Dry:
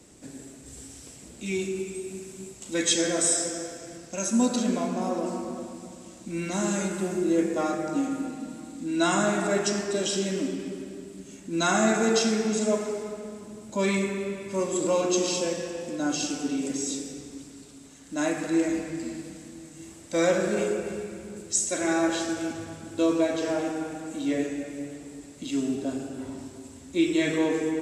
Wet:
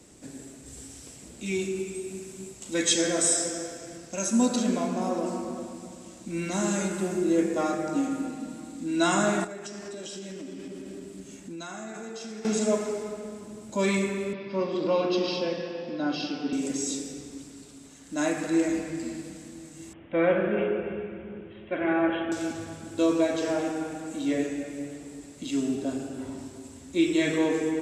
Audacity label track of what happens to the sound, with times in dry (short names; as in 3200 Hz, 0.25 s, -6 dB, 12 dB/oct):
9.440000	12.450000	compressor 12:1, threshold -35 dBFS
14.330000	16.530000	Chebyshev band-pass 120–5100 Hz, order 5
19.930000	22.320000	steep low-pass 3300 Hz 96 dB/oct